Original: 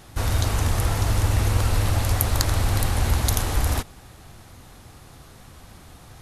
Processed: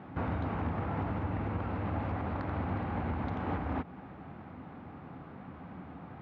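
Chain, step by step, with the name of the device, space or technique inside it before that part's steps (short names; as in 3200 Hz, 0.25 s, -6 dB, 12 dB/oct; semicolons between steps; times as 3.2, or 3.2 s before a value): bass amplifier (compressor 6:1, threshold -26 dBFS, peak gain reduction 11.5 dB; speaker cabinet 83–2100 Hz, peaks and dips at 110 Hz -8 dB, 180 Hz +8 dB, 270 Hz +8 dB, 820 Hz +3 dB, 1800 Hz -4 dB)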